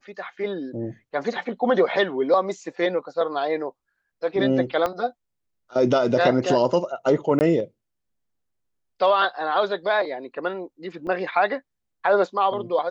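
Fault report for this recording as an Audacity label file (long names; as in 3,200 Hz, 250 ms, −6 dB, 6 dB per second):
4.860000	4.860000	click −12 dBFS
7.390000	7.410000	drop-out 19 ms
11.070000	11.070000	drop-out 4.6 ms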